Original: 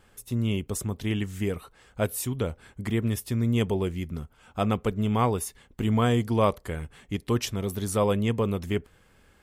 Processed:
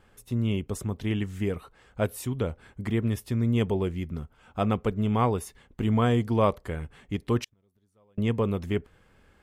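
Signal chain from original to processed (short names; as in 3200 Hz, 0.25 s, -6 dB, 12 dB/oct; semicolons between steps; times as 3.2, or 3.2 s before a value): high shelf 4400 Hz -9 dB; 7.44–8.18 flipped gate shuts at -27 dBFS, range -39 dB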